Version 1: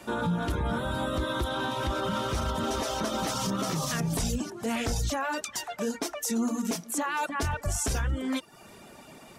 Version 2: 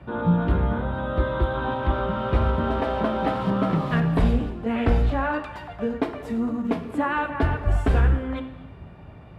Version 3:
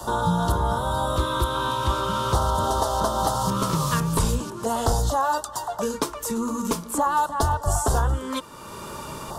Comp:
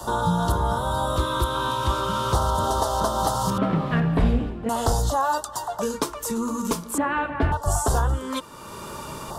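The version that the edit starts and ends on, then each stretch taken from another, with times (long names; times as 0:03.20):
3
0:03.58–0:04.69: punch in from 2
0:06.98–0:07.52: punch in from 2
not used: 1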